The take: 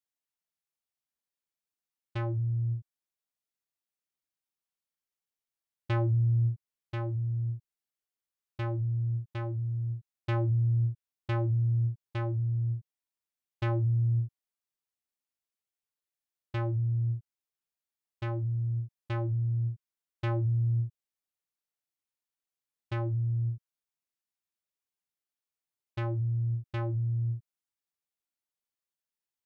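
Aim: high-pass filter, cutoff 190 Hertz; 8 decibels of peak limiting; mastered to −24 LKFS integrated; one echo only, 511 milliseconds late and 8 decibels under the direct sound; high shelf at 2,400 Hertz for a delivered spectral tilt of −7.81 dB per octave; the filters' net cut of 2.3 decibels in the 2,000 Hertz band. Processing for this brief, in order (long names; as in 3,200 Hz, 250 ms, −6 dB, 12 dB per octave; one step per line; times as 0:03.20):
high-pass filter 190 Hz
parametric band 2,000 Hz −5 dB
high-shelf EQ 2,400 Hz +4 dB
brickwall limiter −27 dBFS
single-tap delay 511 ms −8 dB
level +16.5 dB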